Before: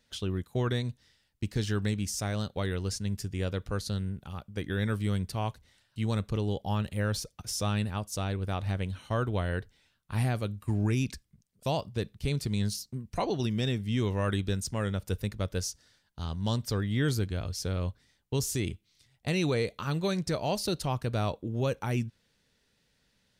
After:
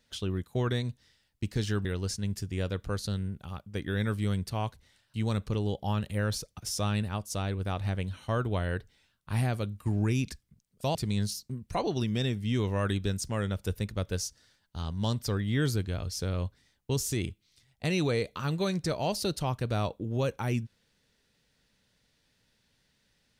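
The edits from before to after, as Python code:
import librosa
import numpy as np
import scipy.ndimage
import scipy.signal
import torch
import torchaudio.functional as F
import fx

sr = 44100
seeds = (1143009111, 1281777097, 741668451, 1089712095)

y = fx.edit(x, sr, fx.cut(start_s=1.85, length_s=0.82),
    fx.cut(start_s=11.77, length_s=0.61), tone=tone)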